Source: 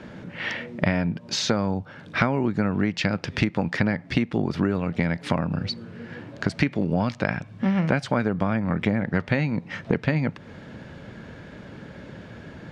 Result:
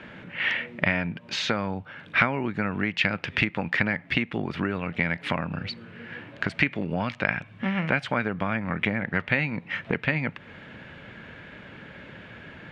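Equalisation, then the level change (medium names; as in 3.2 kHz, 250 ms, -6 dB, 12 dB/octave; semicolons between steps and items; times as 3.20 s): tilt shelf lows -6 dB, about 1.3 kHz; resonant high shelf 3.8 kHz -12 dB, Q 1.5; 0.0 dB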